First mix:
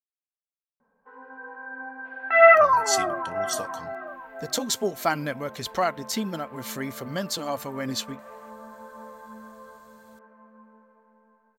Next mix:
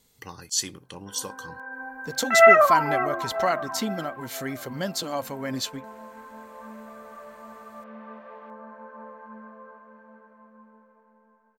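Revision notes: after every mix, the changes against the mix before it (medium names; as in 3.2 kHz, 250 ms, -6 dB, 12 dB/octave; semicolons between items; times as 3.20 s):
speech: entry -2.35 s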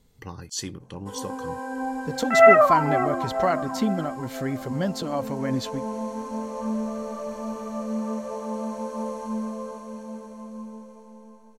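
first sound: remove four-pole ladder low-pass 1.7 kHz, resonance 70%; master: add tilt EQ -2.5 dB/octave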